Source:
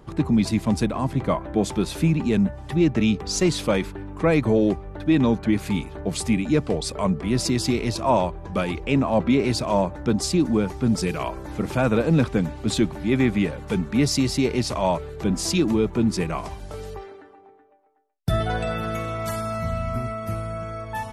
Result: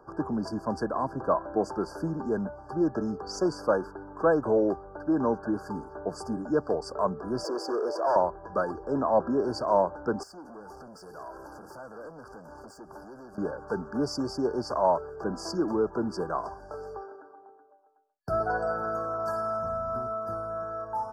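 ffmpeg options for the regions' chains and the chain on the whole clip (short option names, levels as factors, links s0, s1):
-filter_complex "[0:a]asettb=1/sr,asplit=3[s0][s1][s2];[s0]atrim=end=7.444[s3];[s1]atrim=start=7.44:end=8.16,asetpts=PTS-STARTPTS,afade=t=in:d=0.004:c=qsin,afade=t=out:st=0.716:d=0.004:c=qsin,highpass=f=470:t=q:w=3.1,volume=11.9,asoftclip=hard,volume=0.0841[s4];[s2]atrim=start=8.156[s5];[s3][s4]acrossfade=d=0.004:c1=hsin:c2=qsin[s6];[s6][s5]acrossfade=d=0.004:c1=qsin:c2=hsin,asettb=1/sr,asplit=3[s7][s8][s9];[s7]atrim=end=10.234[s10];[s8]atrim=start=10.23:end=13.38,asetpts=PTS-STARTPTS,afade=t=in:d=0.004:c=qsin,afade=t=out:st=3.146:d=0.004:c=qsin,aemphasis=mode=production:type=75fm,acompressor=threshold=0.0282:ratio=8:attack=3.2:release=140:knee=1:detection=peak,volume=59.6,asoftclip=hard,volume=0.0168[s11];[s9]atrim=start=13.376[s12];[s10][s11]acrossfade=d=0.004:c1=hsin:c2=qsin[s13];[s13][s12]acrossfade=d=0.004:c1=qsin:c2=hsin,afftfilt=real='re*(1-between(b*sr/4096,1700,4500))':imag='im*(1-between(b*sr/4096,1700,4500))':win_size=4096:overlap=0.75,acrossover=split=360 3800:gain=0.158 1 0.1[s14][s15][s16];[s14][s15][s16]amix=inputs=3:normalize=0"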